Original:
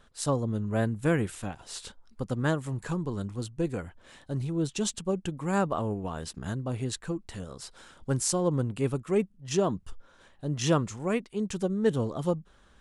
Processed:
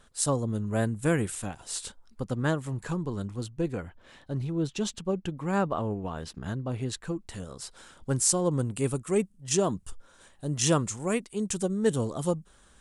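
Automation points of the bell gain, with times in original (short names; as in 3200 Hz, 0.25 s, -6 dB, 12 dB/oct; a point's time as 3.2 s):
bell 8800 Hz 1 oct
1.83 s +9 dB
2.27 s +0.5 dB
3.34 s +0.5 dB
3.86 s -7 dB
6.66 s -7 dB
7.34 s +4.5 dB
8.15 s +4.5 dB
8.73 s +14 dB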